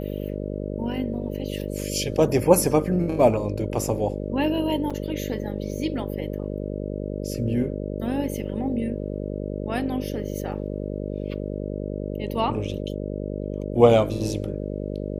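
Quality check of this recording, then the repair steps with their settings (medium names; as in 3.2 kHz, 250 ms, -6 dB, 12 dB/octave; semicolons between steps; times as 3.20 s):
buzz 50 Hz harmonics 12 -30 dBFS
4.90–4.91 s: dropout 5.3 ms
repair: de-hum 50 Hz, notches 12; interpolate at 4.90 s, 5.3 ms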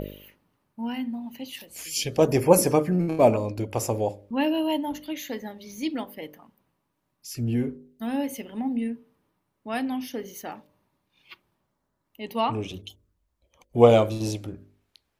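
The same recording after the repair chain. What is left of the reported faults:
nothing left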